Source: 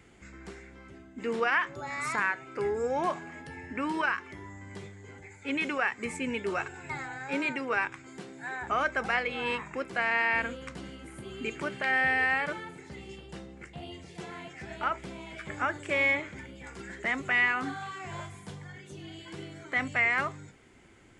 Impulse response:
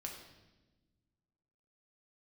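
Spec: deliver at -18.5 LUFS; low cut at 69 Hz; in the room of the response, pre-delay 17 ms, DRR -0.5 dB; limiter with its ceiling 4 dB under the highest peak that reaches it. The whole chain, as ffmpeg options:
-filter_complex "[0:a]highpass=69,alimiter=limit=-19dB:level=0:latency=1,asplit=2[a][b];[1:a]atrim=start_sample=2205,adelay=17[c];[b][c]afir=irnorm=-1:irlink=0,volume=2.5dB[d];[a][d]amix=inputs=2:normalize=0,volume=9.5dB"

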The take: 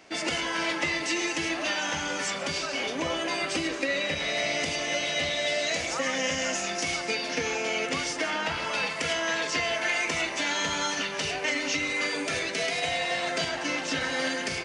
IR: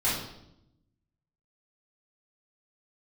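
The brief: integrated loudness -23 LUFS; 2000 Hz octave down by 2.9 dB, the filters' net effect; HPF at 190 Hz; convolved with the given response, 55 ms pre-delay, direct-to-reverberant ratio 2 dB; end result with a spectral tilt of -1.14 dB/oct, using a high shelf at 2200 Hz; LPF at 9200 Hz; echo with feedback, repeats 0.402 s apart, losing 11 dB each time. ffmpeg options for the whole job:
-filter_complex "[0:a]highpass=190,lowpass=9.2k,equalizer=f=2k:t=o:g=-6,highshelf=f=2.2k:g=4.5,aecho=1:1:402|804|1206:0.282|0.0789|0.0221,asplit=2[a][b];[1:a]atrim=start_sample=2205,adelay=55[c];[b][c]afir=irnorm=-1:irlink=0,volume=-13dB[d];[a][d]amix=inputs=2:normalize=0,volume=2.5dB"

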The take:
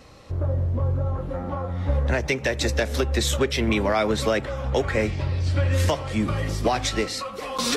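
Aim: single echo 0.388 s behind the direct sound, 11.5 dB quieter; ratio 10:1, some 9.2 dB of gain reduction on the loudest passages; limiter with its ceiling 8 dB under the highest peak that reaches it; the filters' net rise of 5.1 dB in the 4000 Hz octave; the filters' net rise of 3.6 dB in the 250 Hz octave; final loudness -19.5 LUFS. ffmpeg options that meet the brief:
-af "equalizer=f=250:t=o:g=4.5,equalizer=f=4k:t=o:g=6,acompressor=threshold=-25dB:ratio=10,alimiter=limit=-23dB:level=0:latency=1,aecho=1:1:388:0.266,volume=12.5dB"

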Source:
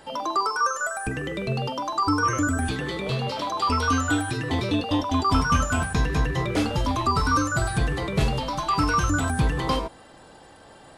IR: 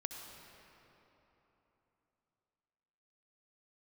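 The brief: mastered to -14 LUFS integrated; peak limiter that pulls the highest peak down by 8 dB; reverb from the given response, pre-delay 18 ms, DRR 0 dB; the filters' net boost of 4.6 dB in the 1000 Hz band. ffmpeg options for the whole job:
-filter_complex "[0:a]equalizer=f=1k:t=o:g=5.5,alimiter=limit=-16dB:level=0:latency=1,asplit=2[a][b];[1:a]atrim=start_sample=2205,adelay=18[c];[b][c]afir=irnorm=-1:irlink=0,volume=1dB[d];[a][d]amix=inputs=2:normalize=0,volume=8dB"

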